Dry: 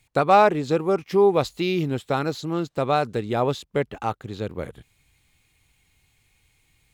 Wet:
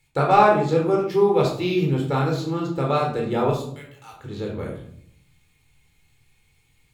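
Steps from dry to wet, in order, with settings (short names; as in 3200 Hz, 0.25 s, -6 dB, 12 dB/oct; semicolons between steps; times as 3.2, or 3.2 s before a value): 3.5–4.13 differentiator; shoebox room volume 980 m³, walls furnished, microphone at 4.2 m; gain -5 dB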